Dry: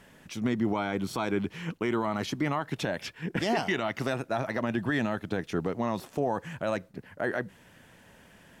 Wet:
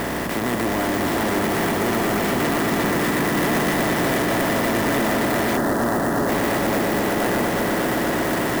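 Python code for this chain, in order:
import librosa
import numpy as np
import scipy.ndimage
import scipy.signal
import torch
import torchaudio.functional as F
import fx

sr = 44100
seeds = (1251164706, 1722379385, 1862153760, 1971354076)

p1 = fx.bin_compress(x, sr, power=0.2)
p2 = fx.add_hum(p1, sr, base_hz=60, snr_db=17)
p3 = p2 + fx.echo_swell(p2, sr, ms=120, loudest=5, wet_db=-8, dry=0)
p4 = 10.0 ** (-15.5 / 20.0) * np.tanh(p3 / 10.0 ** (-15.5 / 20.0))
p5 = fx.steep_lowpass(p4, sr, hz=1900.0, slope=96, at=(5.57, 6.29))
y = fx.clock_jitter(p5, sr, seeds[0], jitter_ms=0.038)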